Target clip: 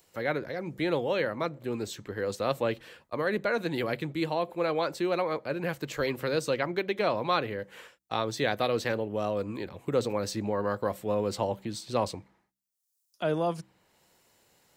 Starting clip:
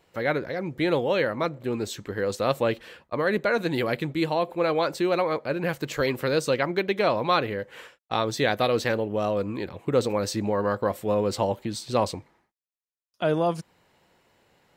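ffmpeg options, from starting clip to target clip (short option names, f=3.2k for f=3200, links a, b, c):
-filter_complex "[0:a]acrossover=split=250|5200[a][b][c];[a]bandreject=f=64.48:t=h:w=4,bandreject=f=128.96:t=h:w=4,bandreject=f=193.44:t=h:w=4,bandreject=f=257.92:t=h:w=4,bandreject=f=322.4:t=h:w=4[d];[c]acompressor=mode=upward:threshold=-52dB:ratio=2.5[e];[d][b][e]amix=inputs=3:normalize=0,volume=-4.5dB"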